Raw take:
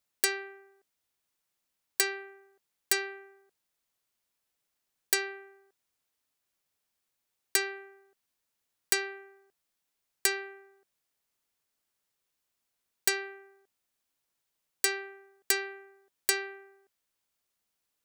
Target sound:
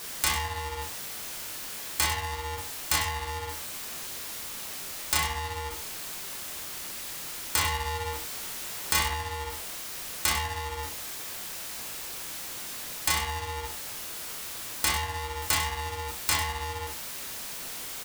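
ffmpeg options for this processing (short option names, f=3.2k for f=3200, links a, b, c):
-filter_complex "[0:a]aeval=exprs='val(0)+0.5*0.015*sgn(val(0))':c=same,asplit=2[a][b];[b]alimiter=limit=-18.5dB:level=0:latency=1:release=339,volume=2dB[c];[a][c]amix=inputs=2:normalize=0,asettb=1/sr,asplit=3[d][e][f];[d]atrim=end=7.594[g];[e]atrim=start=7.59:end=9.06,asetpts=PTS-STARTPTS,afade=t=in:d=0.004:c=qsin,afade=t=out:st=1.466:d=0.004:c=qsin,asplit=2[h][i];[i]adelay=26,volume=-6.5dB[j];[h][j]amix=inputs=2:normalize=0,atrim=end_sample=64827[k];[f]atrim=start=9.056[l];[g][k]acrossfade=d=0.004:c1=hsin:c2=qsin[m];[m][l]acrossfade=d=0.004:c1=qsin:c2=hsin,asplit=2[n][o];[o]aecho=0:1:34.99|99.13:0.562|0.316[p];[n][p]amix=inputs=2:normalize=0,flanger=delay=22.5:depth=6.2:speed=2.4,aeval=exprs='val(0)*sgn(sin(2*PI*470*n/s))':c=same"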